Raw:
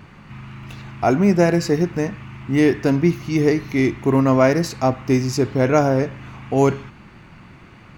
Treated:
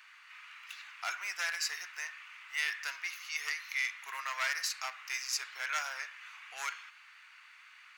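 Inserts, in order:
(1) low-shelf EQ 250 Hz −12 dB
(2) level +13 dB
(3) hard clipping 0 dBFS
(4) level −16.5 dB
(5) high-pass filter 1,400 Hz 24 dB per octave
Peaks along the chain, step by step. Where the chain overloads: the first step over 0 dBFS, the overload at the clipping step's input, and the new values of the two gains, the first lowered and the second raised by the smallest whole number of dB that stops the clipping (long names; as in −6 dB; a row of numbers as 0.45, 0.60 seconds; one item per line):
−3.5, +9.5, 0.0, −16.5, −18.0 dBFS
step 2, 9.5 dB
step 2 +3 dB, step 4 −6.5 dB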